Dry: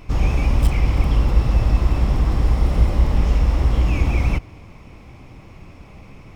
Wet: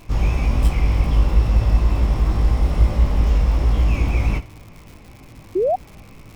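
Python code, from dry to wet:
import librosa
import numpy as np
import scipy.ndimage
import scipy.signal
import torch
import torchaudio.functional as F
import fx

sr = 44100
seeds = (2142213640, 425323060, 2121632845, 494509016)

y = fx.room_early_taps(x, sr, ms=(19, 73), db=(-4.0, -16.5))
y = fx.spec_paint(y, sr, seeds[0], shape='rise', start_s=5.55, length_s=0.21, low_hz=340.0, high_hz=790.0, level_db=-15.0)
y = fx.dmg_crackle(y, sr, seeds[1], per_s=190.0, level_db=-33.0)
y = y * 10.0 ** (-2.5 / 20.0)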